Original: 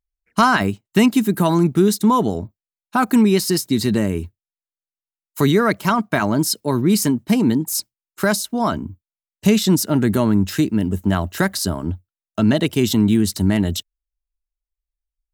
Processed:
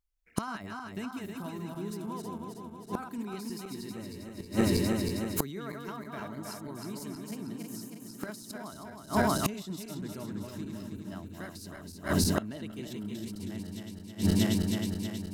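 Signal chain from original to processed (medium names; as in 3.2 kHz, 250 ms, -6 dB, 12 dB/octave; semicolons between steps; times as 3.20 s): backward echo that repeats 159 ms, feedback 76%, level -3 dB; inverted gate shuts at -12 dBFS, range -25 dB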